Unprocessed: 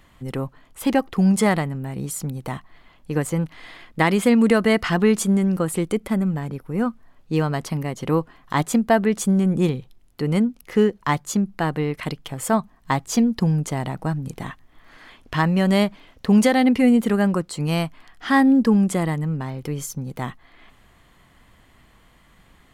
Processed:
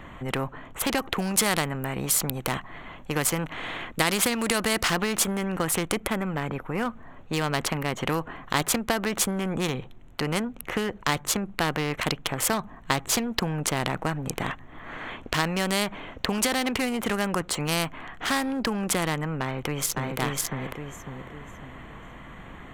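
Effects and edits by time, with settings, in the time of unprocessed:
0.97–4.88 s: treble shelf 4.2 kHz +5.5 dB
19.41–20.17 s: echo throw 550 ms, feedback 25%, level -1.5 dB
whole clip: local Wiener filter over 9 samples; compression, threshold -17 dBFS; spectrum-flattening compressor 2:1; trim +3 dB

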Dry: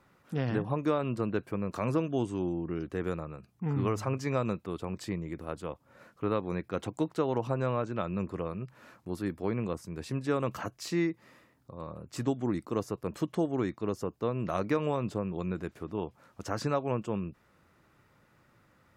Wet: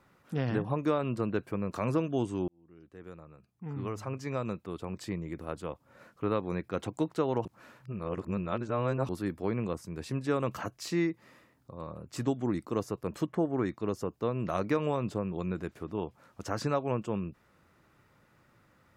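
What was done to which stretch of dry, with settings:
2.48–5.44 s: fade in
7.45–9.09 s: reverse
13.26–13.66 s: resonant high shelf 2.5 kHz -9 dB, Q 1.5

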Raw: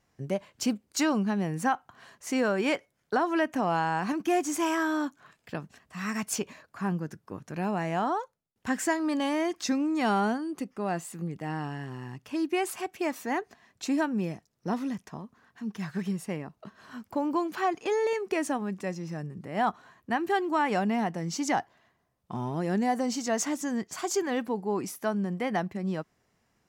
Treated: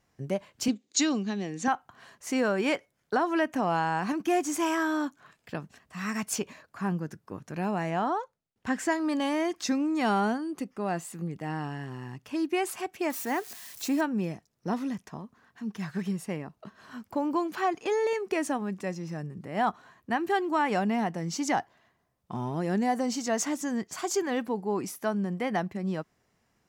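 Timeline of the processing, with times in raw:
0.68–1.68 s: cabinet simulation 250–7300 Hz, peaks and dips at 260 Hz +5 dB, 600 Hz -6 dB, 940 Hz -10 dB, 1.4 kHz -8 dB, 3.7 kHz +9 dB, 6.8 kHz +9 dB
7.90–8.92 s: treble shelf 8.5 kHz -10.5 dB
13.10–14.01 s: zero-crossing glitches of -34.5 dBFS

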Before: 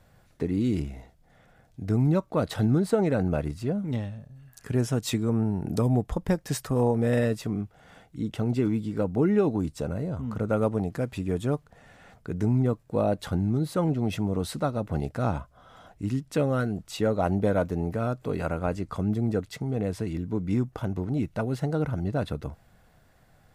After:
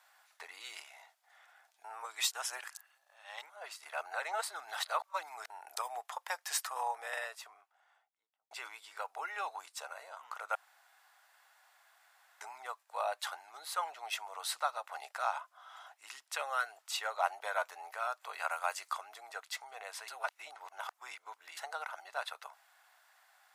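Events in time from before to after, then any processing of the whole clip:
1.84–5.50 s: reverse
6.67–8.51 s: studio fade out
10.55–12.41 s: room tone
18.49–18.92 s: treble shelf 7.1 kHz -> 3.5 kHz +11.5 dB
20.08–21.57 s: reverse
whole clip: steep high-pass 790 Hz 36 dB/octave; trim +1 dB

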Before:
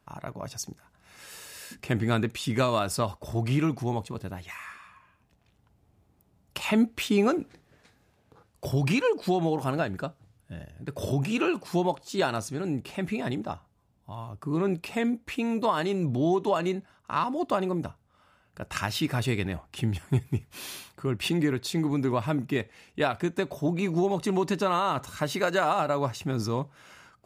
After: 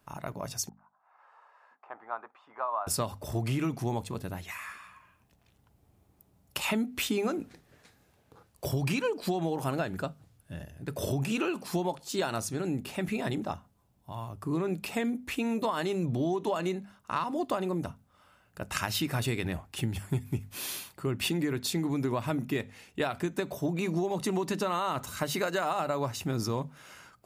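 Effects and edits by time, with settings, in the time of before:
0.69–2.87 s: Butterworth band-pass 950 Hz, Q 1.9
whole clip: treble shelf 9.1 kHz +9 dB; hum notches 50/100/150/200/250 Hz; compression, threshold -26 dBFS

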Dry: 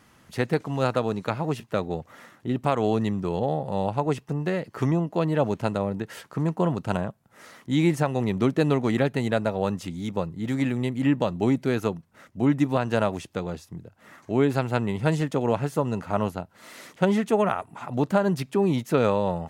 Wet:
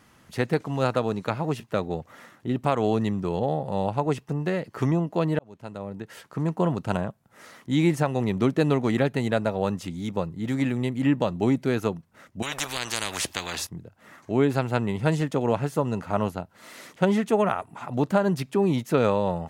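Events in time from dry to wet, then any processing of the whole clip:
5.39–6.58 s: fade in
12.42–13.67 s: spectrum-flattening compressor 10:1

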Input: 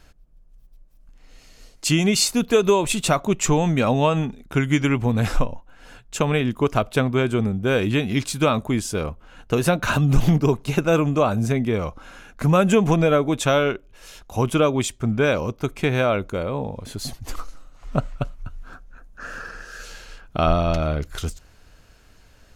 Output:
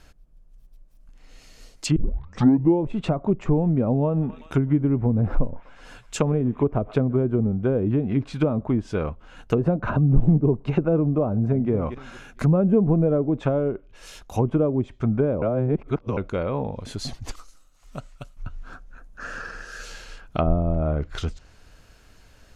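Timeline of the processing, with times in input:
1.96 s: tape start 0.89 s
4.04–7.27 s: thinning echo 124 ms, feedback 76%, level -24 dB
11.28–11.71 s: echo throw 230 ms, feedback 25%, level -12 dB
15.42–16.17 s: reverse
17.31–18.37 s: pre-emphasis filter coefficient 0.8
whole clip: low-pass that closes with the level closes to 480 Hz, closed at -16 dBFS

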